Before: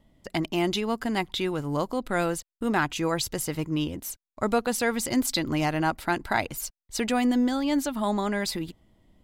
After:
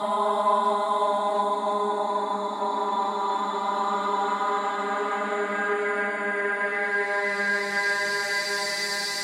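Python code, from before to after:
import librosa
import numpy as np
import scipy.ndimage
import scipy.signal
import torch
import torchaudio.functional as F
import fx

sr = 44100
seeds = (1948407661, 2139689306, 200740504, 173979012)

y = fx.paulstretch(x, sr, seeds[0], factor=21.0, window_s=0.25, from_s=8.04)
y = fx.cheby_harmonics(y, sr, harmonics=(6, 8), levels_db=(-33, -31), full_scale_db=-12.5)
y = fx.weighting(y, sr, curve='A')
y = fx.rev_fdn(y, sr, rt60_s=0.55, lf_ratio=0.9, hf_ratio=0.3, size_ms=20.0, drr_db=-7.5)
y = y * librosa.db_to_amplitude(-3.5)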